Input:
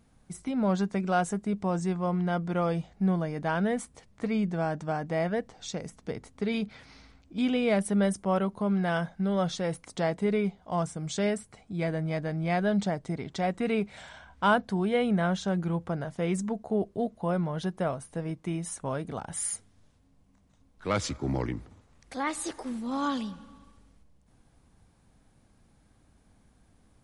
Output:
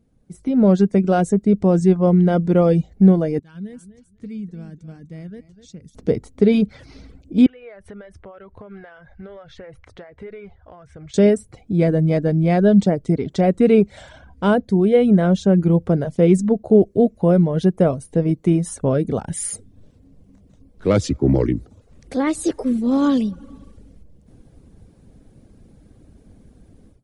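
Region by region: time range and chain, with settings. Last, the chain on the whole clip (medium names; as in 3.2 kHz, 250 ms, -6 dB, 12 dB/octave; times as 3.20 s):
3.39–5.95 s: amplifier tone stack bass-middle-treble 6-0-2 + feedback delay 249 ms, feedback 18%, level -12.5 dB
7.46–11.14 s: FFT filter 100 Hz 0 dB, 180 Hz -22 dB, 1.7 kHz +3 dB, 8.9 kHz -23 dB + compression, threshold -48 dBFS + band-stop 7.4 kHz, Q 19
whole clip: level rider gain up to 15 dB; reverb removal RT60 0.51 s; resonant low shelf 650 Hz +9.5 dB, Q 1.5; trim -9 dB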